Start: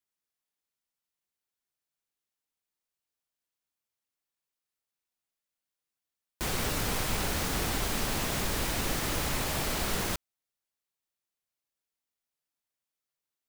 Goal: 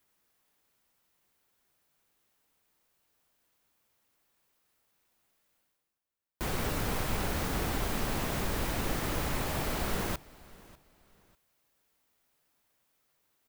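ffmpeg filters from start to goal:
ffmpeg -i in.wav -af "highshelf=frequency=11000:gain=9,areverse,acompressor=mode=upward:threshold=-49dB:ratio=2.5,areverse,highshelf=frequency=3000:gain=-10.5,aecho=1:1:596|1192:0.0794|0.0238" out.wav

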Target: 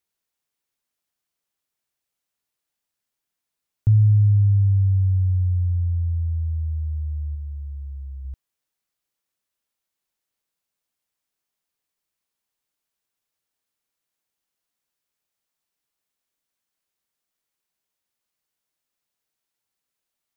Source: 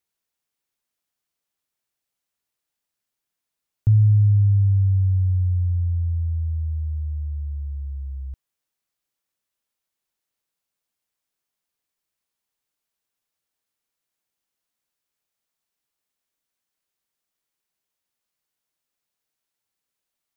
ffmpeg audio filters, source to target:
ffmpeg -i in.wav -filter_complex "[0:a]asettb=1/sr,asplit=3[link_01][link_02][link_03];[link_01]atrim=end=7.354[link_04];[link_02]atrim=start=7.35:end=8.25,asetpts=PTS-STARTPTS,afade=type=in:duration=0.004:curve=qsin,afade=type=out:start_time=0.896:duration=0.004:curve=qsin,bass=frequency=250:gain=-3,treble=frequency=4000:gain=-1[link_05];[link_03]atrim=start=8.246[link_06];[link_04][link_05]acrossfade=duration=0.004:curve1=hsin:curve2=qsin[link_07];[link_07][link_06]acrossfade=duration=0.004:curve1=qsin:curve2=hsin" out.wav

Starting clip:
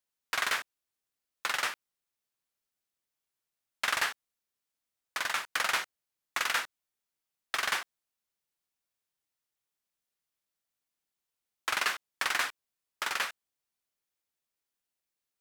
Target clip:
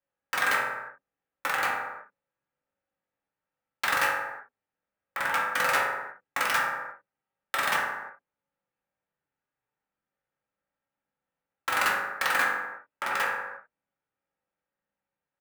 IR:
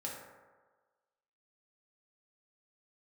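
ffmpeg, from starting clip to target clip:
-filter_complex "[0:a]highshelf=frequency=5100:gain=-4.5,acrossover=split=370|2700[link_01][link_02][link_03];[link_01]asplit=2[link_04][link_05];[link_05]adelay=41,volume=-6.5dB[link_06];[link_04][link_06]amix=inputs=2:normalize=0[link_07];[link_03]acrusher=bits=4:mix=0:aa=0.000001[link_08];[link_07][link_02][link_08]amix=inputs=3:normalize=0[link_09];[1:a]atrim=start_sample=2205,afade=type=out:start_time=0.41:duration=0.01,atrim=end_sample=18522[link_10];[link_09][link_10]afir=irnorm=-1:irlink=0,volume=7dB"

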